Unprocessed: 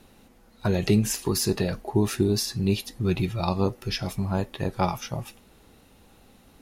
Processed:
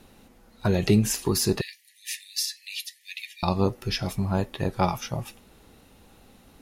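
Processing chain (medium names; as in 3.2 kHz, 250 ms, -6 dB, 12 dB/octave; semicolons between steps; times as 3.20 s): 1.61–3.43 s: brick-wall FIR high-pass 1.7 kHz; trim +1 dB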